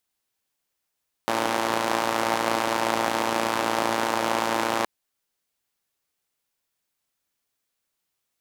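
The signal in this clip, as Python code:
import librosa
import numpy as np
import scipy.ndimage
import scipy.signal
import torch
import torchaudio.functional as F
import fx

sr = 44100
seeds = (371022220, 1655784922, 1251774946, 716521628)

y = fx.engine_four(sr, seeds[0], length_s=3.57, rpm=3400, resonances_hz=(320.0, 560.0, 830.0))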